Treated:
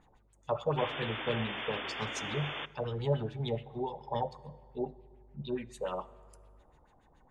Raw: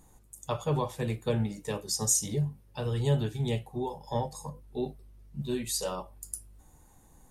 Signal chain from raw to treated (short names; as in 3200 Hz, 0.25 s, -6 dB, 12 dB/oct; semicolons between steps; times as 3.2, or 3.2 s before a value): low shelf 340 Hz -5.5 dB; 4.35–5.94 envelope phaser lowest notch 560 Hz, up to 4900 Hz, full sweep at -29.5 dBFS; LFO low-pass sine 7 Hz 570–3600 Hz; 0.77–2.66 painted sound noise 240–3600 Hz -37 dBFS; on a send: reverb RT60 2.6 s, pre-delay 4 ms, DRR 18 dB; on the sum: gain -2.5 dB